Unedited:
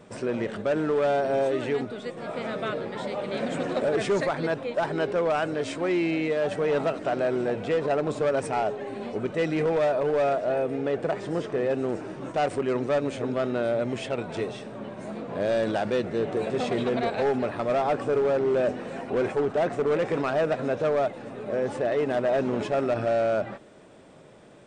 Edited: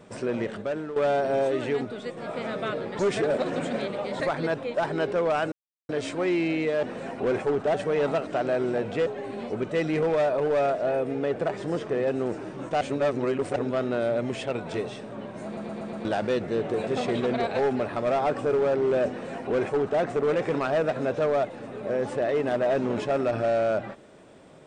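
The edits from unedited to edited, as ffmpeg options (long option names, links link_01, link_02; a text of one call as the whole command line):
ffmpeg -i in.wav -filter_complex "[0:a]asplit=15[link_01][link_02][link_03][link_04][link_05][link_06][link_07][link_08][link_09][link_10][link_11][link_12][link_13][link_14][link_15];[link_01]atrim=end=0.96,asetpts=PTS-STARTPTS,afade=type=out:start_time=0.42:duration=0.54:silence=0.251189[link_16];[link_02]atrim=start=0.96:end=2.992,asetpts=PTS-STARTPTS,afade=type=in:duration=0.004:curve=hsin:silence=0.251189[link_17];[link_03]atrim=start=2.988:end=4.202,asetpts=PTS-STARTPTS,areverse[link_18];[link_04]atrim=start=4.198:end=5.52,asetpts=PTS-STARTPTS,afade=type=out:start_time=1.318:duration=0.004:curve=hsin,apad=pad_dur=0.37[link_19];[link_05]atrim=start=5.52:end=6.462,asetpts=PTS-STARTPTS,afade=type=in:duration=0.004:curve=hsin[link_20];[link_06]atrim=start=18.728:end=19.642[link_21];[link_07]atrim=start=6.458:end=7.782[link_22];[link_08]atrim=start=8.688:end=12.442[link_23];[link_09]atrim=start=12.438:end=13.192,asetpts=PTS-STARTPTS,areverse[link_24];[link_10]atrim=start=13.188:end=15.202[link_25];[link_11]atrim=start=15.078:end=15.202[link_26];[link_12]atrim=start=15.078:end=15.202[link_27];[link_13]atrim=start=15.078:end=15.202[link_28];[link_14]atrim=start=15.078:end=15.202[link_29];[link_15]atrim=start=15.678[link_30];[link_16][link_17]concat=n=2:v=0:a=1[link_31];[link_31][link_18]acrossfade=duration=0.004:curve1=hsin:curve2=hsin[link_32];[link_19][link_20]concat=n=2:v=0:a=1[link_33];[link_32][link_33]acrossfade=duration=0.004:curve1=hsin:curve2=hsin[link_34];[link_34][link_21]acrossfade=duration=0.004:curve1=hsin:curve2=hsin[link_35];[link_35][link_22]acrossfade=duration=0.004:curve1=hsin:curve2=hsin[link_36];[link_36][link_23]acrossfade=duration=0.004:curve1=hsin:curve2=hsin[link_37];[link_37][link_24]acrossfade=duration=0.004:curve1=hsin:curve2=hsin[link_38];[link_38][link_25]acrossfade=duration=0.004:curve1=hsin:curve2=hsin[link_39];[link_39][link_26]acrossfade=duration=0.004:curve1=hsin:curve2=hsin[link_40];[link_40][link_27]acrossfade=duration=0.004:curve1=hsin:curve2=hsin[link_41];[link_41][link_28]acrossfade=duration=0.004:curve1=hsin:curve2=hsin[link_42];[link_42][link_29]acrossfade=duration=0.004:curve1=hsin:curve2=hsin[link_43];[link_43][link_30]acrossfade=duration=0.004:curve1=hsin:curve2=hsin" out.wav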